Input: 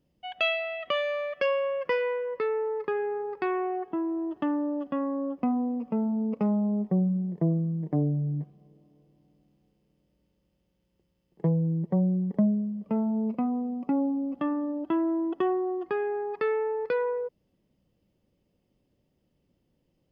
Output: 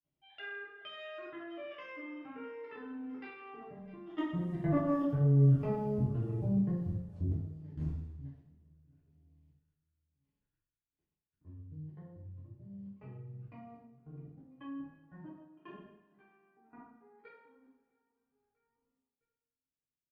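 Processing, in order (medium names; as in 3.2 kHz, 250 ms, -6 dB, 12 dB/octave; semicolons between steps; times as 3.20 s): pitch shift switched off and on -9.5 st, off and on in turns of 417 ms; Doppler pass-by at 5.25 s, 20 m/s, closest 9.4 m; peaking EQ 570 Hz -5 dB 2.5 oct; on a send: feedback delay 655 ms, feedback 41%, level -23 dB; on the sum: Chebyshev shaper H 4 -22 dB, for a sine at -19 dBFS; doubling 40 ms -10.5 dB; level held to a coarse grid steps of 19 dB; level-controlled noise filter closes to 1.5 kHz, open at -44.5 dBFS; treble shelf 2.2 kHz +10 dB; two-slope reverb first 0.67 s, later 2 s, DRR -8.5 dB; tape noise reduction on one side only encoder only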